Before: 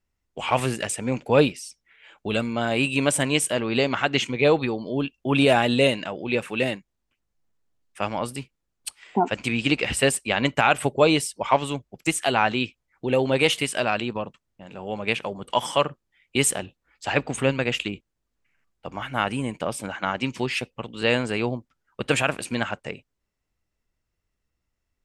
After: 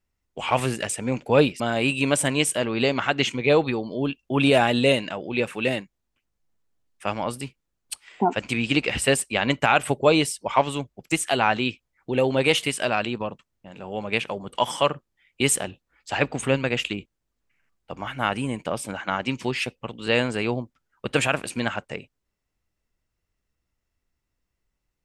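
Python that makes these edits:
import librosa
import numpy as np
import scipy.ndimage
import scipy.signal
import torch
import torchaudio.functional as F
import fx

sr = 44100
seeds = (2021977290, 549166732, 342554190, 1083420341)

y = fx.edit(x, sr, fx.cut(start_s=1.6, length_s=0.95), tone=tone)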